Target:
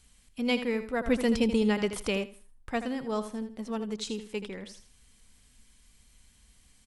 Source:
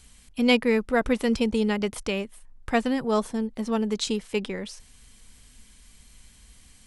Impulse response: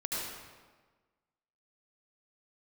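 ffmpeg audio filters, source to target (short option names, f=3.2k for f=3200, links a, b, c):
-filter_complex "[0:a]aecho=1:1:80|160|240:0.282|0.0733|0.0191,asettb=1/sr,asplit=3[a][b][c];[a]atrim=end=1.074[d];[b]atrim=start=1.07:end=2.24,asetpts=PTS-STARTPTS,afade=t=in:d=0.004:c=qsin,afade=t=out:st=1.166:d=0.004:c=qsin,acontrast=63[e];[c]atrim=start=2.236[f];[d][e]acrossfade=d=0.004:c1=hsin:c2=qsin[g];[g][f]acrossfade=d=0.004:c1=qsin:c2=hsin,volume=-8dB"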